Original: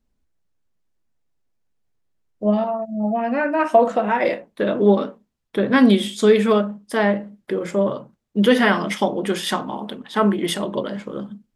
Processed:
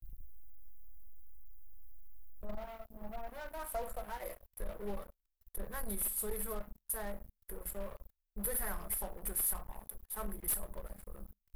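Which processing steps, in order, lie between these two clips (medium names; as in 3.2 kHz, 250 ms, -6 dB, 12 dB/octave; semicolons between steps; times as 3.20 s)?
inverse Chebyshev band-stop 110–6800 Hz, stop band 50 dB; waveshaping leveller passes 5; trim +9 dB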